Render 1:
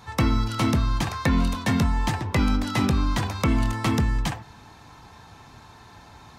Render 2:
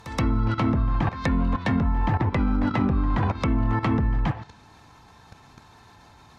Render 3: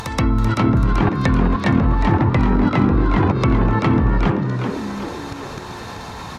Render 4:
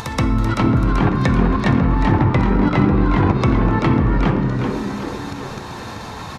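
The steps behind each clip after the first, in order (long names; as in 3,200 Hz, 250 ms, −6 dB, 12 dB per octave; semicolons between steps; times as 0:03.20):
output level in coarse steps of 15 dB; backwards echo 126 ms −15.5 dB; treble cut that deepens with the level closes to 310 Hz, closed at −22 dBFS; level +8.5 dB
upward compression, threshold −26 dBFS; on a send: echo with shifted repeats 385 ms, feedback 50%, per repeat +78 Hz, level −6 dB; on the sum: level +5.5 dB
on a send at −8 dB: convolution reverb RT60 2.2 s, pre-delay 6 ms; on the sum: downsampling to 32,000 Hz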